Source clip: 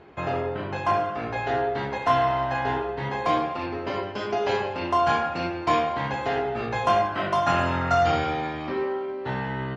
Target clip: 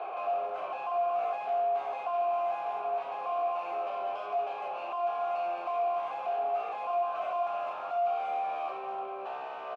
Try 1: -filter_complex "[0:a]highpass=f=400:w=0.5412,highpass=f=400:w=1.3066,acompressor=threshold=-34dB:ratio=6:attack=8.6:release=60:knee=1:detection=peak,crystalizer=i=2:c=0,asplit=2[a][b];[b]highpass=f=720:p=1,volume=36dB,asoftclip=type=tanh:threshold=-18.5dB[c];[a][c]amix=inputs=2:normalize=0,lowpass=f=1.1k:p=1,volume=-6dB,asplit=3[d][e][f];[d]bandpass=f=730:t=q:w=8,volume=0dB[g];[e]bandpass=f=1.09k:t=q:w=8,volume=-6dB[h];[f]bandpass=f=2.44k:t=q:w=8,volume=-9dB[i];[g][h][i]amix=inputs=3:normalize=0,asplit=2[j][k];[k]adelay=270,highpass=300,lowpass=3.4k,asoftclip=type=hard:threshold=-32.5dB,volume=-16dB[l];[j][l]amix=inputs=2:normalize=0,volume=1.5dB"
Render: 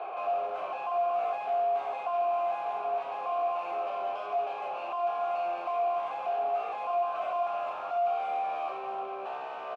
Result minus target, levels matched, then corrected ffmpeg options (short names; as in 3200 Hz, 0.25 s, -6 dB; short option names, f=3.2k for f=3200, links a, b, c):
compressor: peak gain reduction -7.5 dB
-filter_complex "[0:a]highpass=f=400:w=0.5412,highpass=f=400:w=1.3066,acompressor=threshold=-43dB:ratio=6:attack=8.6:release=60:knee=1:detection=peak,crystalizer=i=2:c=0,asplit=2[a][b];[b]highpass=f=720:p=1,volume=36dB,asoftclip=type=tanh:threshold=-18.5dB[c];[a][c]amix=inputs=2:normalize=0,lowpass=f=1.1k:p=1,volume=-6dB,asplit=3[d][e][f];[d]bandpass=f=730:t=q:w=8,volume=0dB[g];[e]bandpass=f=1.09k:t=q:w=8,volume=-6dB[h];[f]bandpass=f=2.44k:t=q:w=8,volume=-9dB[i];[g][h][i]amix=inputs=3:normalize=0,asplit=2[j][k];[k]adelay=270,highpass=300,lowpass=3.4k,asoftclip=type=hard:threshold=-32.5dB,volume=-16dB[l];[j][l]amix=inputs=2:normalize=0,volume=1.5dB"